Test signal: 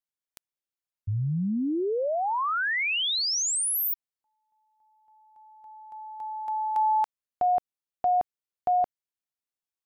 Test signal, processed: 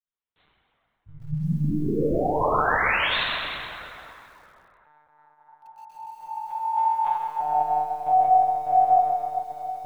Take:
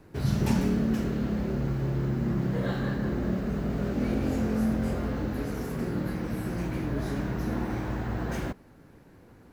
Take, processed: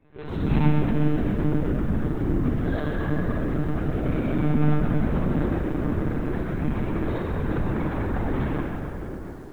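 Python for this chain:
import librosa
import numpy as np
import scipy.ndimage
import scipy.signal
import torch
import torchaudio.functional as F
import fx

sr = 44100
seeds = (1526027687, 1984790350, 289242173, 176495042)

y = fx.chorus_voices(x, sr, voices=4, hz=0.23, base_ms=30, depth_ms=4.0, mix_pct=65)
y = fx.comb_fb(y, sr, f0_hz=370.0, decay_s=0.4, harmonics='all', damping=0.0, mix_pct=60)
y = fx.rev_plate(y, sr, seeds[0], rt60_s=3.5, hf_ratio=0.5, predelay_ms=0, drr_db=-9.5)
y = fx.lpc_monotone(y, sr, seeds[1], pitch_hz=150.0, order=16)
y = fx.echo_crushed(y, sr, ms=129, feedback_pct=55, bits=9, wet_db=-10)
y = F.gain(torch.from_numpy(y), 3.0).numpy()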